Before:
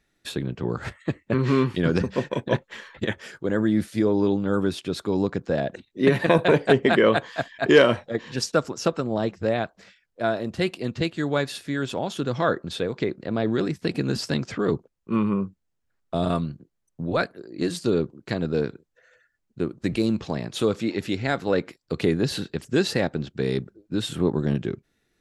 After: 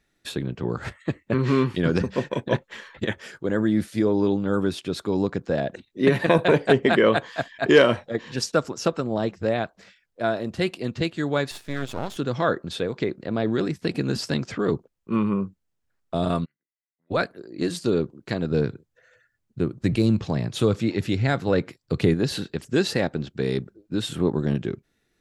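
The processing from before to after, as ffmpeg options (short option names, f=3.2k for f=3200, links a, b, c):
-filter_complex "[0:a]asettb=1/sr,asplit=3[a][b][c];[a]atrim=end=11.514[d];[b]atrim=start=11.51:end=12.17,asetpts=PTS-STARTPTS,afade=t=in:d=0.004:c=qsin,afade=t=out:st=0.656:d=0.004:c=qsin,aeval=exprs='max(val(0),0)':c=same[e];[c]atrim=start=12.166[f];[d][e]acrossfade=d=0.004:c1=hsin:c2=qsin[g];[g][f]acrossfade=d=0.004:c1=qsin:c2=hsin,asplit=3[h][i][j];[h]afade=t=out:st=16.44:d=0.02[k];[i]bandpass=f=2k:t=q:w=20,afade=t=in:st=16.44:d=0.02,afade=t=out:st=17.1:d=0.02[l];[j]afade=t=in:st=17.1:d=0.02[m];[k][l][m]amix=inputs=3:normalize=0,asettb=1/sr,asplit=3[n][o][p];[n]atrim=end=18.514[q];[o]atrim=start=18.51:end=22.14,asetpts=PTS-STARTPTS,afade=t=in:d=0.004:c=qsin,afade=t=out:st=3.626:d=0.004:c=qsin,equalizer=f=110:t=o:w=1.2:g=9.5[r];[p]atrim=start=22.136[s];[q][r]acrossfade=d=0.004:c1=hsin:c2=qsin[t];[t][s]acrossfade=d=0.004:c1=qsin:c2=hsin"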